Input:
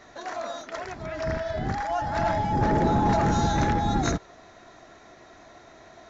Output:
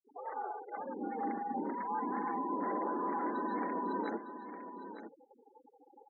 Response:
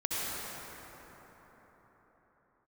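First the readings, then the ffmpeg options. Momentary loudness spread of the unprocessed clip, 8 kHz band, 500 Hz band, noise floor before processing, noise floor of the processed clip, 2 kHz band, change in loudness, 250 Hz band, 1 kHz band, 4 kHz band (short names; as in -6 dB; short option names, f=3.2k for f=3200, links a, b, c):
13 LU, n/a, -11.0 dB, -51 dBFS, -67 dBFS, -13.0 dB, -11.5 dB, -10.0 dB, -9.0 dB, under -25 dB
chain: -filter_complex "[0:a]lowpass=f=1.2k:p=1,equalizer=f=140:t=o:w=2.9:g=10.5,afftfilt=real='re*gte(hypot(re,im),0.0282)':imag='im*gte(hypot(re,im),0.0282)':win_size=1024:overlap=0.75,acrossover=split=620[a][b];[a]acompressor=threshold=-28dB:ratio=6[c];[c][b]amix=inputs=2:normalize=0,alimiter=limit=-20.5dB:level=0:latency=1:release=71,afreqshift=160,aecho=1:1:908:0.299,volume=-7.5dB"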